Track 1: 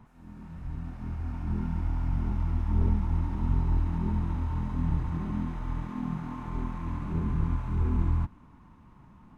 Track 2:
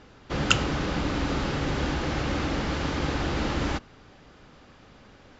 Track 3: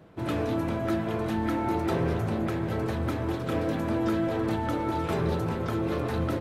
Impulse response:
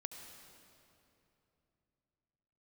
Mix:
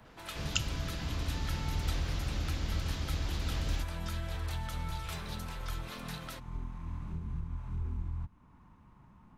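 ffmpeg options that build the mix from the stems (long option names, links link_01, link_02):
-filter_complex "[0:a]equalizer=frequency=280:width_type=o:width=0.77:gain=-3.5,alimiter=limit=-23dB:level=0:latency=1:release=483,volume=-4dB[link_01];[1:a]adelay=50,volume=-5.5dB[link_02];[2:a]highpass=960,volume=2dB[link_03];[link_01][link_02][link_03]amix=inputs=3:normalize=0,acrossover=split=150|3000[link_04][link_05][link_06];[link_05]acompressor=threshold=-54dB:ratio=2[link_07];[link_04][link_07][link_06]amix=inputs=3:normalize=0"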